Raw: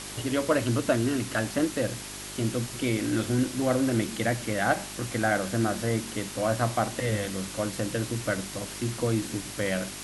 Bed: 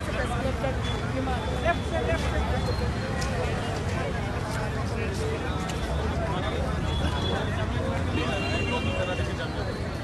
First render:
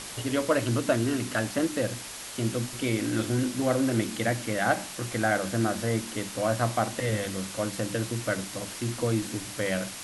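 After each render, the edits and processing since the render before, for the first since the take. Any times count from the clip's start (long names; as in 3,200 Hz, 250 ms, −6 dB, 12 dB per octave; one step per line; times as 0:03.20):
hum removal 50 Hz, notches 8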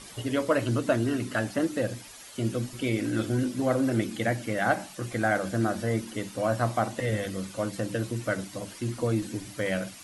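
broadband denoise 11 dB, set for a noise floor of −40 dBFS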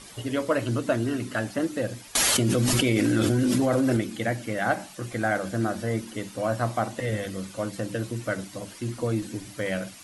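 0:02.15–0:03.97: envelope flattener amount 100%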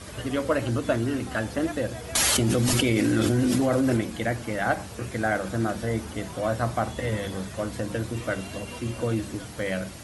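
mix in bed −12 dB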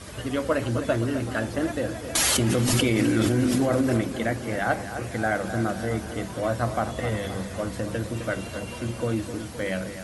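bucket-brigade delay 259 ms, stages 4,096, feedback 56%, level −10.5 dB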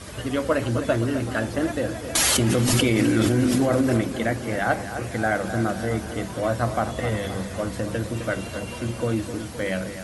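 level +2 dB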